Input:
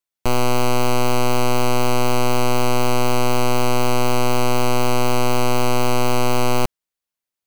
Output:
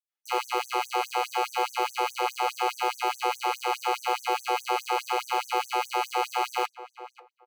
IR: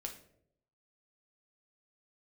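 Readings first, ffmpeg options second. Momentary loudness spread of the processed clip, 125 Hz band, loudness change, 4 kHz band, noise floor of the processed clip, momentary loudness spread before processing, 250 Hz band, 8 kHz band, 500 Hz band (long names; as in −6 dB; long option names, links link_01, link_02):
3 LU, below −40 dB, −8.0 dB, −7.0 dB, −76 dBFS, 0 LU, −20.0 dB, −12.0 dB, −12.0 dB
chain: -filter_complex "[0:a]bass=frequency=250:gain=-14,treble=frequency=4000:gain=-12,aecho=1:1:2.4:0.7,flanger=delay=4.8:depth=7.8:regen=-66:speed=0.34:shape=sinusoidal,lowshelf=frequency=210:gain=-9,asplit=2[link_01][link_02];[link_02]adelay=539,lowpass=frequency=1400:poles=1,volume=-13dB,asplit=2[link_03][link_04];[link_04]adelay=539,lowpass=frequency=1400:poles=1,volume=0.2[link_05];[link_01][link_03][link_05]amix=inputs=3:normalize=0,asplit=2[link_06][link_07];[1:a]atrim=start_sample=2205,asetrate=66150,aresample=44100[link_08];[link_07][link_08]afir=irnorm=-1:irlink=0,volume=-9dB[link_09];[link_06][link_09]amix=inputs=2:normalize=0,afftfilt=real='re*gte(b*sr/1024,290*pow(6000/290,0.5+0.5*sin(2*PI*4.8*pts/sr)))':imag='im*gte(b*sr/1024,290*pow(6000/290,0.5+0.5*sin(2*PI*4.8*pts/sr)))':win_size=1024:overlap=0.75"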